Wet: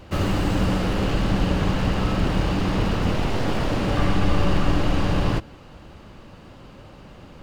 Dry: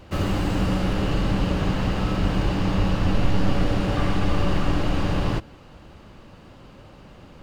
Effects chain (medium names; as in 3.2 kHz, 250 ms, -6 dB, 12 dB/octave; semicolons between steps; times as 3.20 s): one-sided wavefolder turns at -19 dBFS; trim +2 dB